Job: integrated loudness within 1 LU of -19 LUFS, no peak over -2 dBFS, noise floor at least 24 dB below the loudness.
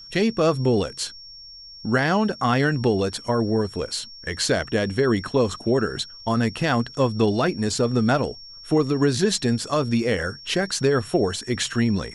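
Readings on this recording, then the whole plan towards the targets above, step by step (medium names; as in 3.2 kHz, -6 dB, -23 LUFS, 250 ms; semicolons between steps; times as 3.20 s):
steady tone 5.5 kHz; tone level -40 dBFS; loudness -22.5 LUFS; peak level -8.5 dBFS; loudness target -19.0 LUFS
-> band-stop 5.5 kHz, Q 30; trim +3.5 dB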